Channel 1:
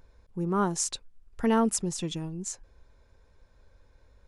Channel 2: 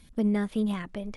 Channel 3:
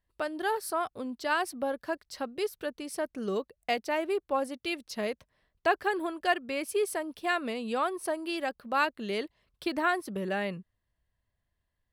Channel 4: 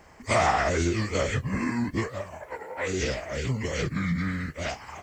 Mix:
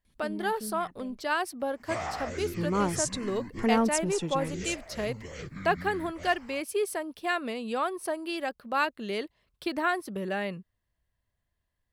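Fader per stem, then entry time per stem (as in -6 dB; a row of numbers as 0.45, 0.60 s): -1.0, -13.0, 0.0, -12.0 dB; 2.20, 0.05, 0.00, 1.60 s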